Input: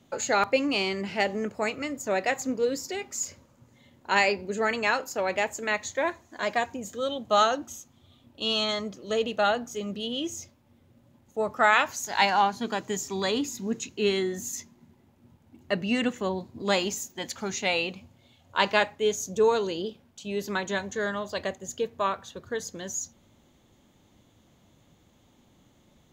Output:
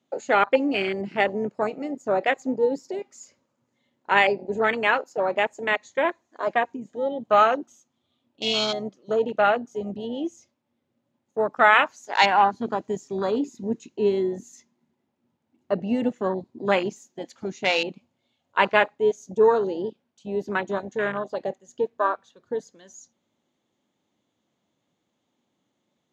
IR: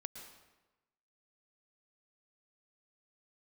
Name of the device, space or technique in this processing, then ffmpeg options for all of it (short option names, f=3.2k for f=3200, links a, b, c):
over-cleaned archive recording: -filter_complex "[0:a]asettb=1/sr,asplit=3[a][b][c];[a]atrim=end=6.534[d];[b]atrim=start=6.53:end=7.2,asetpts=PTS-STARTPTS,afade=t=in:d=0.004:c=qsin,afade=t=out:st=0.666:d=0.004:c=qsin,acrossover=split=3400[e][f];[f]acompressor=threshold=-53dB:ratio=4:attack=1:release=60[g];[e][g]amix=inputs=2:normalize=0[h];[c]atrim=start=7.196[i];[d][h]acrossfade=d=0.004:c1=hsin:c2=qsin[j];[j][i]acrossfade=d=0.004:c1=qsin:c2=hsin,highpass=200,lowpass=7.5k,afwtdn=0.0355,volume=4.5dB"